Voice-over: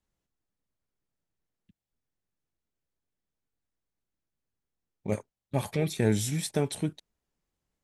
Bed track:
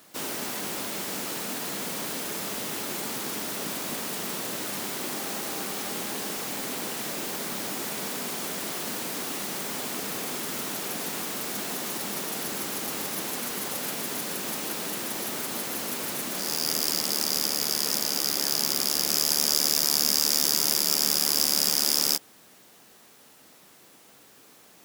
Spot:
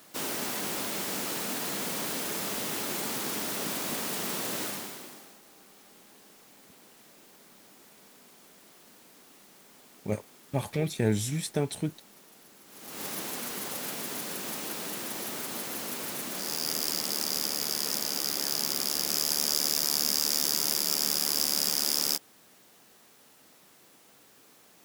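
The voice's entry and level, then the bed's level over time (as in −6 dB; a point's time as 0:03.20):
5.00 s, −1.0 dB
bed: 0:04.64 −0.5 dB
0:05.40 −23 dB
0:12.64 −23 dB
0:13.05 −4 dB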